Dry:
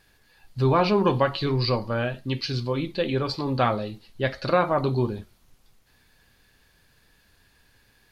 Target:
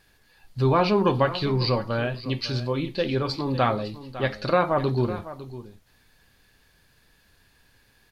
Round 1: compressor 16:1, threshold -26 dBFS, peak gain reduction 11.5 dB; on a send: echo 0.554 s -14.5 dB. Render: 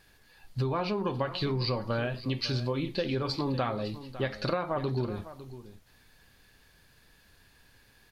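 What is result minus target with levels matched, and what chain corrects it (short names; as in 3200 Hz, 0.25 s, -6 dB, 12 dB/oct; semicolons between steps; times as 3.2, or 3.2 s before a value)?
compressor: peak gain reduction +11.5 dB
on a send: echo 0.554 s -14.5 dB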